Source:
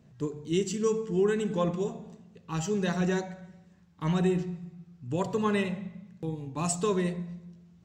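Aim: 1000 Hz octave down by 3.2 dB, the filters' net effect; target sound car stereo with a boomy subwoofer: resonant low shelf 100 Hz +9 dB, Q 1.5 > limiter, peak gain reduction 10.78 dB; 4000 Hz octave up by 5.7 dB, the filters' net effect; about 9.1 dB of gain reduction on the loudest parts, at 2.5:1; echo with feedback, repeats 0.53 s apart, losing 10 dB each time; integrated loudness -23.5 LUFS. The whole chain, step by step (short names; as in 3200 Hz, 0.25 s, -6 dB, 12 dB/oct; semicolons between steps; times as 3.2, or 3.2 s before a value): bell 1000 Hz -4 dB; bell 4000 Hz +7.5 dB; compressor 2.5:1, threshold -36 dBFS; resonant low shelf 100 Hz +9 dB, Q 1.5; feedback echo 0.53 s, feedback 32%, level -10 dB; gain +20 dB; limiter -14 dBFS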